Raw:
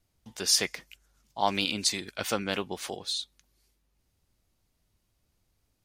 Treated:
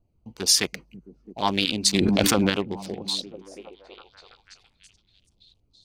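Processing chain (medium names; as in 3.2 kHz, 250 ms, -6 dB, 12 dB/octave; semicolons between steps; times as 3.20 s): local Wiener filter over 25 samples; LFO notch saw down 4.7 Hz 500–2100 Hz; repeats whose band climbs or falls 332 ms, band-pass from 160 Hz, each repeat 0.7 oct, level -8 dB; loudness maximiser +12.5 dB; 1.94–2.50 s: level flattener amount 100%; trim -5.5 dB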